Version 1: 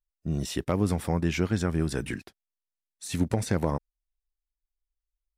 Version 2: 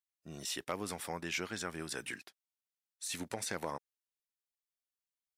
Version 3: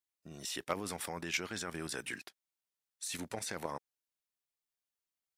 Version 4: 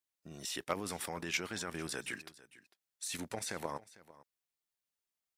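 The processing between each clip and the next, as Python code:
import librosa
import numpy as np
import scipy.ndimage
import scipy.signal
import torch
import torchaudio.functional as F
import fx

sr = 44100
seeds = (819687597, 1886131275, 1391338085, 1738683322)

y1 = fx.highpass(x, sr, hz=1400.0, slope=6)
y1 = y1 * librosa.db_to_amplitude(-1.5)
y2 = fx.level_steps(y1, sr, step_db=9)
y2 = y2 * librosa.db_to_amplitude(5.0)
y3 = y2 + 10.0 ** (-19.5 / 20.0) * np.pad(y2, (int(450 * sr / 1000.0), 0))[:len(y2)]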